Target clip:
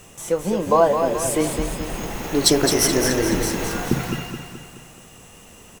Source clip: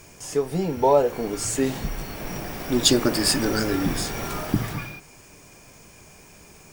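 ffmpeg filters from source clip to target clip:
ffmpeg -i in.wav -af "asetrate=51156,aresample=44100,aecho=1:1:213|426|639|852|1065|1278:0.473|0.237|0.118|0.0591|0.0296|0.0148,volume=2dB" out.wav

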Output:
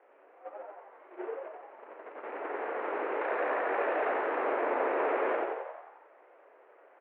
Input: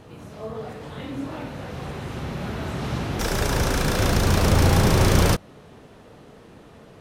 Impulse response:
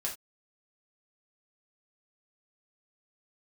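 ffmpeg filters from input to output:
-filter_complex "[0:a]aeval=exprs='val(0)+0.5*0.0316*sgn(val(0))':channel_layout=same,aemphasis=mode=reproduction:type=75kf,agate=range=-24dB:threshold=-26dB:ratio=16:detection=peak,acompressor=threshold=-31dB:ratio=2,asplit=2[link_01][link_02];[link_02]asplit=8[link_03][link_04][link_05][link_06][link_07][link_08][link_09][link_10];[link_03]adelay=89,afreqshift=90,volume=-3dB[link_11];[link_04]adelay=178,afreqshift=180,volume=-7.9dB[link_12];[link_05]adelay=267,afreqshift=270,volume=-12.8dB[link_13];[link_06]adelay=356,afreqshift=360,volume=-17.6dB[link_14];[link_07]adelay=445,afreqshift=450,volume=-22.5dB[link_15];[link_08]adelay=534,afreqshift=540,volume=-27.4dB[link_16];[link_09]adelay=623,afreqshift=630,volume=-32.3dB[link_17];[link_10]adelay=712,afreqshift=720,volume=-37.2dB[link_18];[link_11][link_12][link_13][link_14][link_15][link_16][link_17][link_18]amix=inputs=8:normalize=0[link_19];[link_01][link_19]amix=inputs=2:normalize=0,highpass=frequency=330:width_type=q:width=0.5412,highpass=frequency=330:width_type=q:width=1.307,lowpass=frequency=2300:width_type=q:width=0.5176,lowpass=frequency=2300:width_type=q:width=0.7071,lowpass=frequency=2300:width_type=q:width=1.932,afreqshift=87"

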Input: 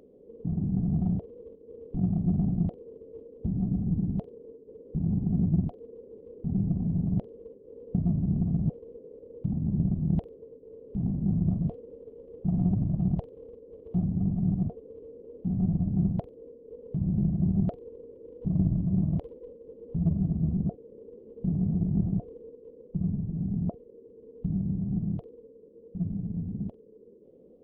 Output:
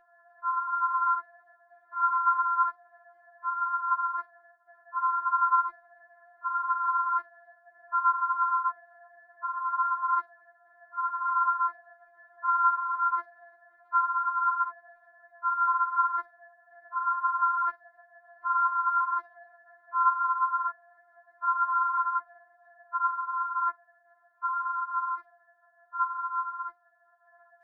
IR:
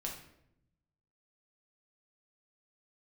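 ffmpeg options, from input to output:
-af "aeval=exprs='val(0)*sin(2*PI*1200*n/s)':channel_layout=same,bandreject=frequency=49.47:width_type=h:width=4,bandreject=frequency=98.94:width_type=h:width=4,afftfilt=real='re*4*eq(mod(b,16),0)':imag='im*4*eq(mod(b,16),0)':win_size=2048:overlap=0.75,volume=-1.5dB"

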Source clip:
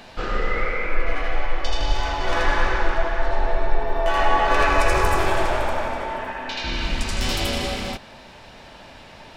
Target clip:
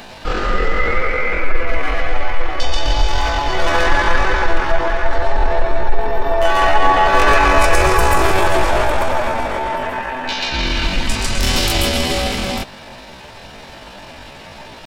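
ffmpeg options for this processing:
ffmpeg -i in.wav -af "atempo=0.63,crystalizer=i=0.5:c=0,acontrast=65,volume=1dB" out.wav

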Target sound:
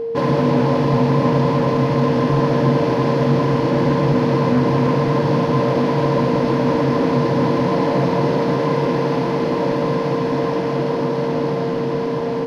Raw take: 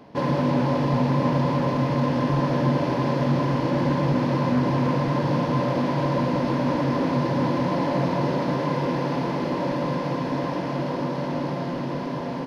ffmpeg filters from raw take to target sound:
ffmpeg -i in.wav -af "aeval=exprs='val(0)+0.0501*sin(2*PI*460*n/s)':channel_layout=same,volume=5dB" out.wav

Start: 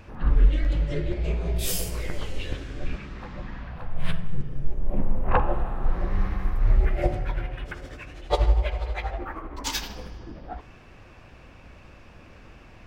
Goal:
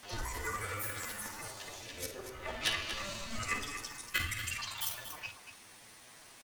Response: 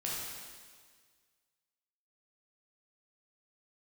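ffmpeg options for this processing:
-filter_complex "[0:a]highpass=frequency=420:poles=1,bandreject=frequency=1100:width=27,aeval=exprs='(tanh(14.1*val(0)+0.15)-tanh(0.15))/14.1':channel_layout=same,afreqshift=-32,aeval=exprs='0.133*(cos(1*acos(clip(val(0)/0.133,-1,1)))-cos(1*PI/2))+0.000841*(cos(2*acos(clip(val(0)/0.133,-1,1)))-cos(2*PI/2))+0.00944*(cos(3*acos(clip(val(0)/0.133,-1,1)))-cos(3*PI/2))':channel_layout=same,asetrate=80880,aresample=44100,atempo=0.545254,acrusher=bits=9:mix=0:aa=0.000001,asplit=2[link_01][link_02];[link_02]aecho=0:1:105|472:0.282|0.316[link_03];[link_01][link_03]amix=inputs=2:normalize=0,asetrate=88200,aresample=44100"

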